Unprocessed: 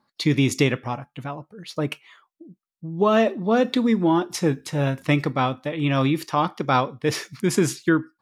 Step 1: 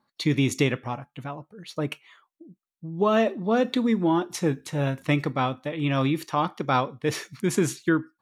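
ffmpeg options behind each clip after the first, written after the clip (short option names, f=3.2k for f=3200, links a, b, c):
-af "bandreject=f=5k:w=9.5,volume=-3dB"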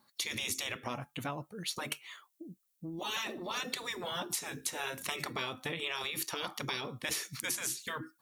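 -af "crystalizer=i=3.5:c=0,afftfilt=real='re*lt(hypot(re,im),0.178)':imag='im*lt(hypot(re,im),0.178)':win_size=1024:overlap=0.75,acompressor=threshold=-33dB:ratio=6"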